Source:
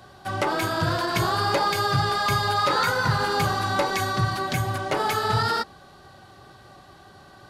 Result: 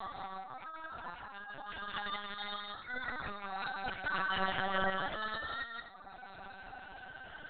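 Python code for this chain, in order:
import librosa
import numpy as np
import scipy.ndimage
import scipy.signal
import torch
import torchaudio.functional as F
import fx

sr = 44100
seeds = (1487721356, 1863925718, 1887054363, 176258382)

y = fx.spec_ripple(x, sr, per_octave=1.2, drift_hz=0.35, depth_db=8)
y = scipy.signal.sosfilt(scipy.signal.butter(2, 630.0, 'highpass', fs=sr, output='sos'), y)
y = fx.dereverb_blind(y, sr, rt60_s=1.3)
y = fx.spec_gate(y, sr, threshold_db=-25, keep='strong')
y = fx.peak_eq(y, sr, hz=960.0, db=fx.steps((0.0, 4.5), (1.34, -11.0)), octaves=0.5)
y = fx.over_compress(y, sr, threshold_db=-37.0, ratio=-0.5)
y = fx.doubler(y, sr, ms=48.0, db=-13.5)
y = fx.echo_multitap(y, sr, ms=(69, 173, 257), db=(-15.0, -4.5, -14.0))
y = fx.lpc_vocoder(y, sr, seeds[0], excitation='pitch_kept', order=10)
y = F.gain(torch.from_numpy(y), -1.5).numpy()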